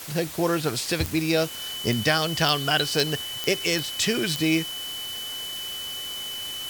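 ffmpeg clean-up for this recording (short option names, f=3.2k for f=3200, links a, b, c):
-af "adeclick=t=4,bandreject=f=3k:w=30,afwtdn=0.013"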